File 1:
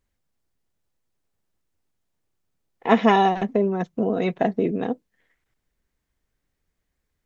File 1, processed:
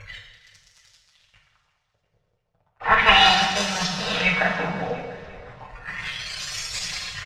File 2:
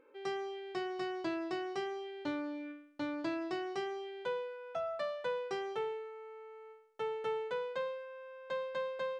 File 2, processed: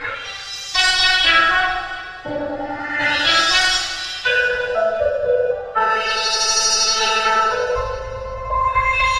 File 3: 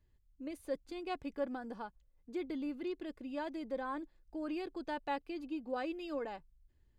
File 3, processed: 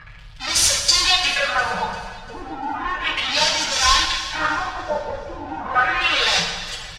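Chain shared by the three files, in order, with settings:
jump at every zero crossing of -27 dBFS; high-pass 47 Hz; spectral noise reduction 18 dB; peaking EQ 400 Hz -4 dB 0.77 oct; comb 6.6 ms, depth 89%; LFO notch sine 10 Hz 250–2400 Hz; in parallel at -7 dB: sample-rate reducer 1.1 kHz, jitter 0%; on the sum: LFO low-pass sine 0.34 Hz 480–6000 Hz; amplifier tone stack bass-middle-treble 10-0-10; echo whose repeats swap between lows and highs 174 ms, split 1.3 kHz, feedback 65%, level -11.5 dB; two-slope reverb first 0.97 s, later 2.7 s, from -19 dB, DRR 1 dB; peak normalisation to -1.5 dBFS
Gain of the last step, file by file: +8.0 dB, +20.5 dB, +17.0 dB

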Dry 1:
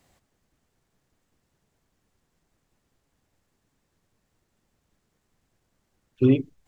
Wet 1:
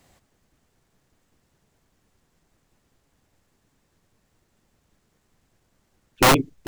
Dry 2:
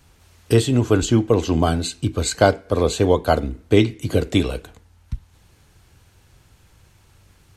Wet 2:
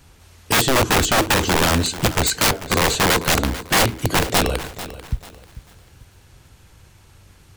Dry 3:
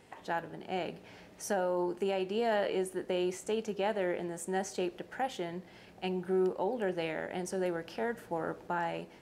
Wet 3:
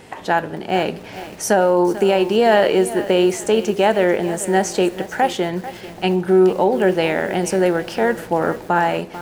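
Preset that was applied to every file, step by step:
integer overflow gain 14.5 dB; bit-crushed delay 442 ms, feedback 35%, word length 8-bit, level -14 dB; normalise loudness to -18 LUFS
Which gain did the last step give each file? +5.5 dB, +4.5 dB, +16.5 dB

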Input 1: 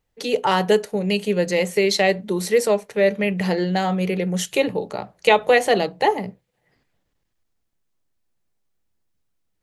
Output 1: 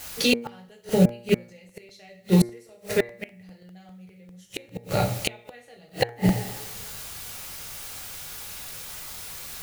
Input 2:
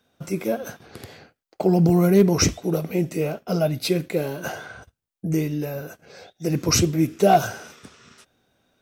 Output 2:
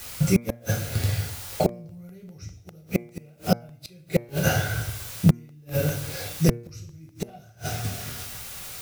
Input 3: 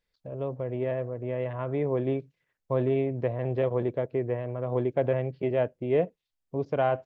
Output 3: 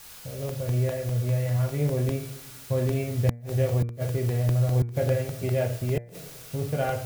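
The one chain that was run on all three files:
fifteen-band graphic EQ 100 Hz +10 dB, 400 Hz -4 dB, 1 kHz -10 dB; in parallel at -9 dB: word length cut 6-bit, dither triangular; on the sum: resonant low shelf 150 Hz +7.5 dB, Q 1.5; two-slope reverb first 0.44 s, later 1.6 s, DRR -0.5 dB; inverted gate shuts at -10 dBFS, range -37 dB; de-hum 118.1 Hz, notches 20; crackling interface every 0.20 s, samples 64, repeat, from 0.49 s; normalise loudness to -27 LUFS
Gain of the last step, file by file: +3.0 dB, +3.5 dB, -3.5 dB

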